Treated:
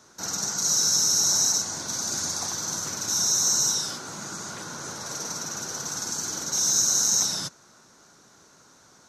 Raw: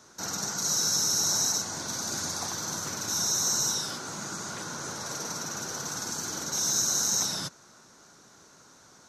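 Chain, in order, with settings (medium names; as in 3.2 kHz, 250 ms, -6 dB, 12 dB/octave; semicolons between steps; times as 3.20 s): dynamic bell 6.5 kHz, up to +5 dB, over -38 dBFS, Q 1.1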